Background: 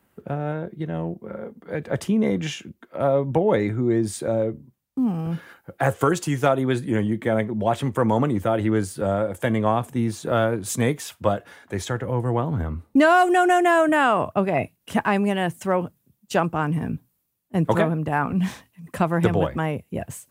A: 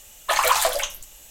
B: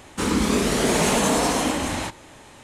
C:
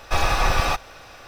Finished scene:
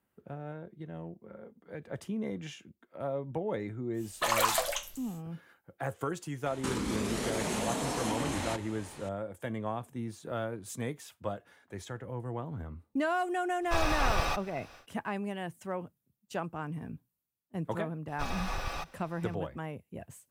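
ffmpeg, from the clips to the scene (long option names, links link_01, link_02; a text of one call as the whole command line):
ffmpeg -i bed.wav -i cue0.wav -i cue1.wav -i cue2.wav -filter_complex "[3:a]asplit=2[link_01][link_02];[0:a]volume=-14.5dB[link_03];[2:a]acompressor=threshold=-27dB:ratio=6:attack=3.2:release=140:knee=1:detection=peak[link_04];[1:a]atrim=end=1.3,asetpts=PTS-STARTPTS,volume=-8.5dB,afade=type=in:duration=0.1,afade=type=out:start_time=1.2:duration=0.1,adelay=173313S[link_05];[link_04]atrim=end=2.63,asetpts=PTS-STARTPTS,volume=-3.5dB,afade=type=in:duration=0.004:curve=hsin,afade=type=out:start_time=2.626:duration=0.004:curve=hsin,adelay=6460[link_06];[link_01]atrim=end=1.27,asetpts=PTS-STARTPTS,volume=-9dB,afade=type=in:duration=0.1,afade=type=out:start_time=1.17:duration=0.1,adelay=13600[link_07];[link_02]atrim=end=1.27,asetpts=PTS-STARTPTS,volume=-15.5dB,afade=type=in:duration=0.004:curve=hsin,afade=type=out:start_time=1.266:duration=0.004:curve=hsin,adelay=18080[link_08];[link_03][link_05][link_06][link_07][link_08]amix=inputs=5:normalize=0" out.wav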